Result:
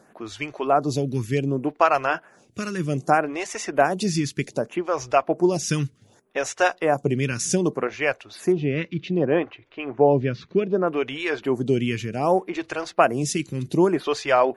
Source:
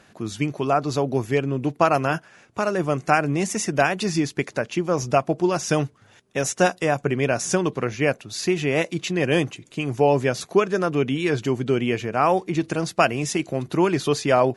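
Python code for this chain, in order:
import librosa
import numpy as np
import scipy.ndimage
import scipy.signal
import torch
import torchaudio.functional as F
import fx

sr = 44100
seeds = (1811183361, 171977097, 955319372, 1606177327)

y = fx.gaussian_blur(x, sr, sigma=2.6, at=(8.52, 10.88))
y = fx.stagger_phaser(y, sr, hz=0.65)
y = y * librosa.db_to_amplitude(2.0)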